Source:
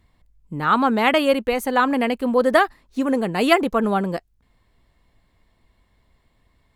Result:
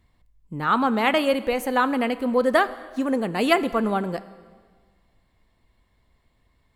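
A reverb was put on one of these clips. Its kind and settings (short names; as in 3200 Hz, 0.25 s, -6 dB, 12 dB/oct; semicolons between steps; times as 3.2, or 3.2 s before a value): plate-style reverb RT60 1.6 s, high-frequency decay 0.9×, DRR 14 dB; gain -3 dB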